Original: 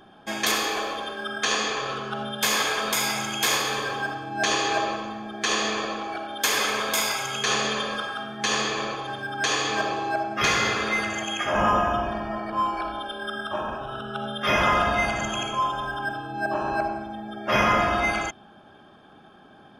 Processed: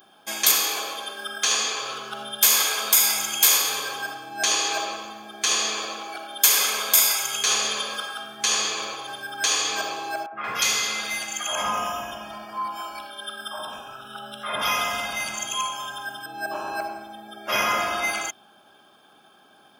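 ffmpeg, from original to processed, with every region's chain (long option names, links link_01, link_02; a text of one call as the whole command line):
ffmpeg -i in.wav -filter_complex "[0:a]asettb=1/sr,asplit=3[link_01][link_02][link_03];[link_01]atrim=end=10.264[link_04];[link_02]atrim=start=10.26:end=16.26,asetpts=PTS-STARTPTS,afade=type=in:duration=0.004:curve=qsin,afade=type=out:start_time=5.996:duration=0.004:curve=qsin,equalizer=frequency=360:width_type=o:width=0.24:gain=-10,acrossover=split=540|1800[link_05][link_06][link_07];[link_05]adelay=60[link_08];[link_07]adelay=180[link_09];[link_08][link_06][link_09]amix=inputs=3:normalize=0,atrim=end_sample=264600[link_10];[link_03]atrim=start=16.256[link_11];[link_04][link_10]acrossfade=duration=0.004:curve1=hsin:curve2=qsin[link_12];[link_12][link_11]acrossfade=duration=0.004:curve1=qsin:curve2=hsin,aemphasis=mode=production:type=riaa,bandreject=frequency=1800:width=11,volume=-3dB" out.wav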